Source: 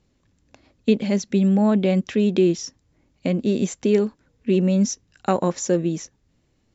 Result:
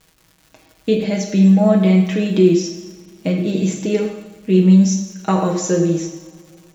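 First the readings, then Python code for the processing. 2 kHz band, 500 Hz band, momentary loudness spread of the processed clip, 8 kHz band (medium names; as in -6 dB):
+4.5 dB, +3.5 dB, 15 LU, no reading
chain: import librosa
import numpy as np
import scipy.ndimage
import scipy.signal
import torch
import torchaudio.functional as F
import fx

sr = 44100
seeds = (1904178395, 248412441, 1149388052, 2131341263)

y = fx.rev_double_slope(x, sr, seeds[0], early_s=0.88, late_s=3.2, knee_db=-21, drr_db=1.0)
y = fx.dmg_crackle(y, sr, seeds[1], per_s=240.0, level_db=-39.0)
y = y + 0.72 * np.pad(y, (int(6.3 * sr / 1000.0), 0))[:len(y)]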